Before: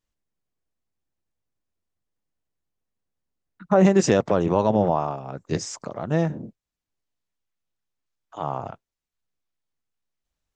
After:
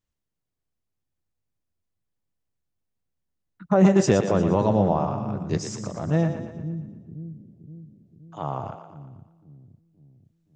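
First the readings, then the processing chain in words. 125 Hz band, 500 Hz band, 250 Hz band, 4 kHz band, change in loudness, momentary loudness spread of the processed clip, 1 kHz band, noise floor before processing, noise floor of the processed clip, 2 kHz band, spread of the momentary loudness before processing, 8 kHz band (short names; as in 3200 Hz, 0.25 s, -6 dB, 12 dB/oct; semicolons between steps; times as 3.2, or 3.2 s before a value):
+2.5 dB, -1.5 dB, +1.0 dB, -2.0 dB, -1.0 dB, 21 LU, -2.0 dB, under -85 dBFS, -82 dBFS, -2.0 dB, 16 LU, -2.0 dB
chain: bell 100 Hz +6.5 dB 2.2 oct; split-band echo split 310 Hz, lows 0.522 s, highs 0.117 s, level -8.5 dB; gain -3 dB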